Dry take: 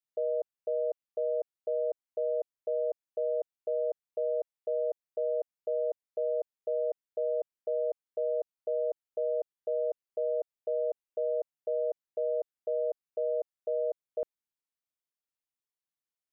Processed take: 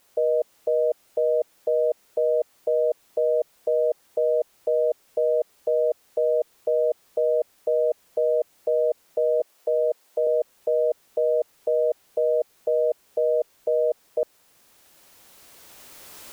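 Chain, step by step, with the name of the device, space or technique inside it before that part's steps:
cheap recorder with automatic gain (white noise bed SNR 33 dB; camcorder AGC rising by 9.3 dB per second)
0:09.40–0:10.27: high-pass filter 300 Hz 12 dB per octave
parametric band 520 Hz +5 dB 1.9 octaves
level +4 dB

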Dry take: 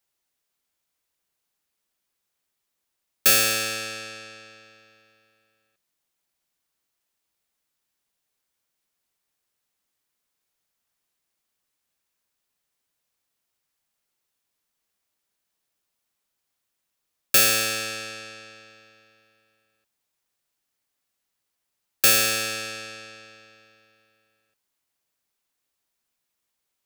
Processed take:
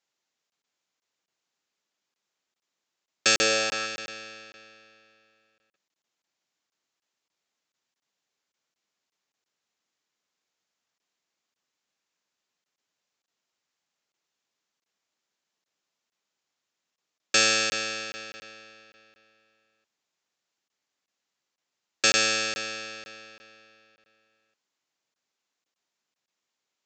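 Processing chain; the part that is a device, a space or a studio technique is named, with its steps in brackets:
call with lost packets (high-pass filter 160 Hz 12 dB per octave; downsampling to 16,000 Hz; dropped packets random)
0:03.36–0:03.85: parametric band 340 Hz → 1,200 Hz +8.5 dB 0.91 octaves

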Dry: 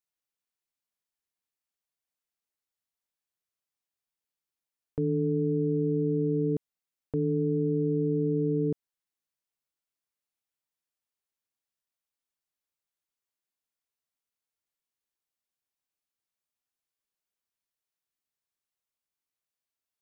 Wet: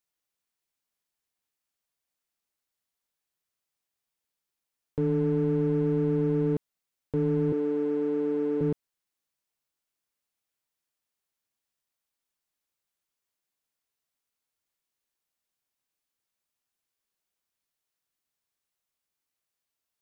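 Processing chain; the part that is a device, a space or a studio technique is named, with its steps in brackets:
parallel distortion (in parallel at −4 dB: hard clipping −35 dBFS, distortion −6 dB)
0:07.52–0:08.61: on the sum: elliptic high-pass filter 210 Hz, stop band 50 dB

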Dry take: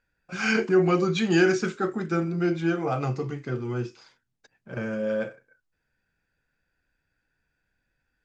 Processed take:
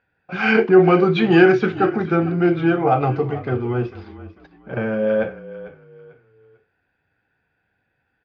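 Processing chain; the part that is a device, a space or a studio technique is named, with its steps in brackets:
frequency-shifting delay pedal into a guitar cabinet (echo with shifted repeats 446 ms, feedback 32%, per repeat −33 Hz, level −16 dB; loudspeaker in its box 88–3,500 Hz, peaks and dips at 95 Hz +6 dB, 430 Hz +4 dB, 770 Hz +8 dB)
level +6.5 dB

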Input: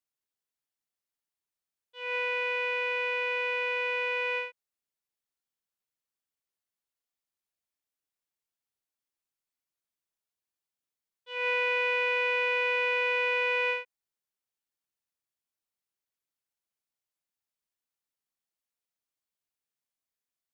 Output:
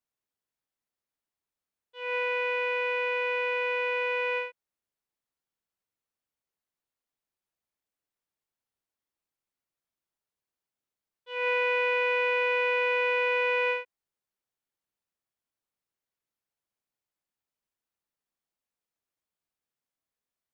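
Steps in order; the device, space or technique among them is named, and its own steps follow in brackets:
behind a face mask (high-shelf EQ 2,200 Hz −8 dB)
level +4 dB

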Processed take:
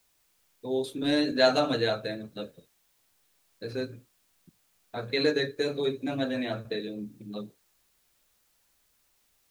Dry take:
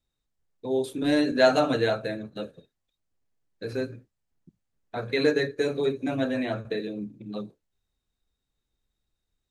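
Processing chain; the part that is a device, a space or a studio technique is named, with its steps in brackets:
parametric band 4,000 Hz +6 dB 0.81 octaves
plain cassette with noise reduction switched in (one half of a high-frequency compander decoder only; tape wow and flutter 18 cents; white noise bed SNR 38 dB)
level −3 dB

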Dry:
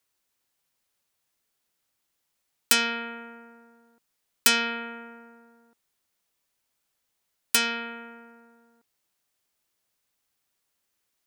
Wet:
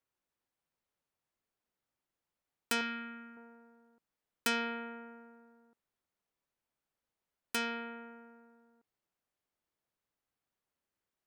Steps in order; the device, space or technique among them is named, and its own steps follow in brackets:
0:02.81–0:03.37: flat-topped bell 570 Hz −11 dB
through cloth (high-shelf EQ 2,500 Hz −14 dB)
level −4.5 dB

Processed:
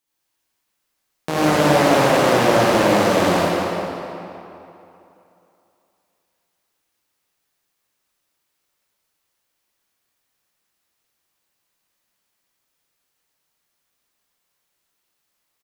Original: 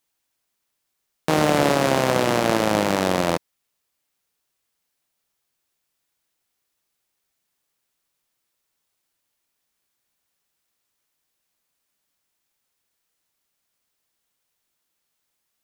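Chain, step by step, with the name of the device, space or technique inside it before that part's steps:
cave (single-tap delay 253 ms −11.5 dB; convolution reverb RT60 2.9 s, pre-delay 59 ms, DRR −8 dB)
level −4.5 dB

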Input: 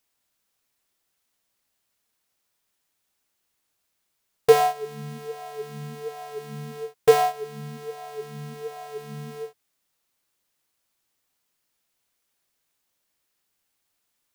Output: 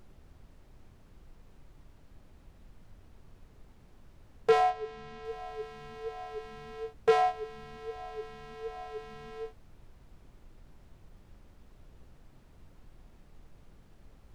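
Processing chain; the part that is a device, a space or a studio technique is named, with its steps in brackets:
aircraft cabin announcement (band-pass filter 400–3,700 Hz; soft clipping −12.5 dBFS, distortion −13 dB; brown noise bed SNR 15 dB)
0:04.70–0:05.25: low-pass filter 7,000 Hz 12 dB per octave
level −3 dB

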